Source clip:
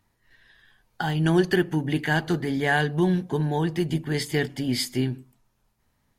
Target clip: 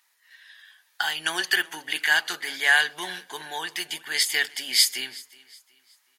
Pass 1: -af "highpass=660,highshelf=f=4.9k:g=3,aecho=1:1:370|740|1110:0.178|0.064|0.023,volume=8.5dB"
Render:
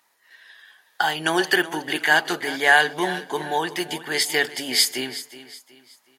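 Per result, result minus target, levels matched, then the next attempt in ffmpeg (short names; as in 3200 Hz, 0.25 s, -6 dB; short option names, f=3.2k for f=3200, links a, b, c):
500 Hz band +12.0 dB; echo-to-direct +7 dB
-af "highpass=1.6k,highshelf=f=4.9k:g=3,aecho=1:1:370|740|1110:0.178|0.064|0.023,volume=8.5dB"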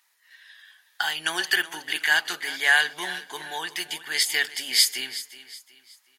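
echo-to-direct +7 dB
-af "highpass=1.6k,highshelf=f=4.9k:g=3,aecho=1:1:370|740|1110:0.0794|0.0286|0.0103,volume=8.5dB"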